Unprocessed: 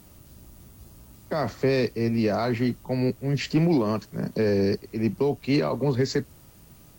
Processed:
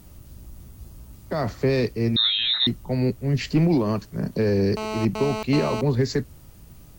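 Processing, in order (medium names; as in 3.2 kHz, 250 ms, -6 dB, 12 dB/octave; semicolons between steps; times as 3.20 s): bass shelf 92 Hz +11.5 dB; 2.16–2.67 s: frequency inversion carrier 3.9 kHz; 4.77–5.81 s: mobile phone buzz -29 dBFS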